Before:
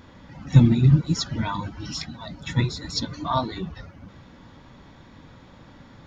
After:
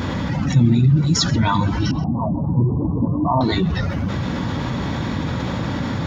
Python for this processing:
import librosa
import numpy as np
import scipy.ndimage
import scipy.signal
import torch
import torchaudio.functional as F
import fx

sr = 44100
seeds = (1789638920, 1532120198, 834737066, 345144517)

p1 = scipy.signal.sosfilt(scipy.signal.butter(2, 95.0, 'highpass', fs=sr, output='sos'), x)
p2 = fx.low_shelf(p1, sr, hz=160.0, db=9.0)
p3 = fx.cheby_ripple(p2, sr, hz=1100.0, ripple_db=3, at=(1.91, 3.41))
p4 = p3 + fx.echo_single(p3, sr, ms=129, db=-20.5, dry=0)
p5 = fx.env_flatten(p4, sr, amount_pct=70)
y = F.gain(torch.from_numpy(p5), -7.0).numpy()